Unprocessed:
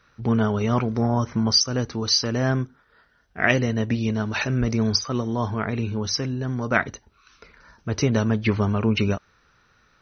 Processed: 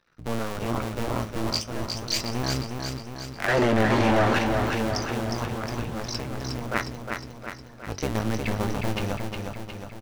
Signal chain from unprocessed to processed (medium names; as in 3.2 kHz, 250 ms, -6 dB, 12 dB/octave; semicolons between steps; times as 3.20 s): cycle switcher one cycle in 2, muted; 1.56–2.10 s: compression, threshold -25 dBFS, peak gain reduction 8 dB; flange 0.33 Hz, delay 5.6 ms, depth 6.7 ms, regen +67%; 3.48–4.39 s: overdrive pedal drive 37 dB, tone 1.2 kHz, clips at -11.5 dBFS; on a send: feedback delay 360 ms, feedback 58%, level -5 dB